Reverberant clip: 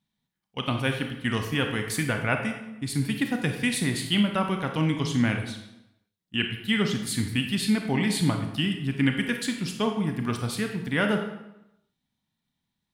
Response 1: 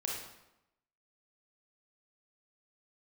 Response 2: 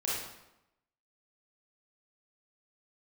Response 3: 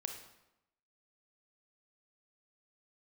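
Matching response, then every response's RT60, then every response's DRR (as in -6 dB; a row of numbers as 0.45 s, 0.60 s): 3; 0.90 s, 0.90 s, 0.90 s; -2.5 dB, -7.0 dB, 4.0 dB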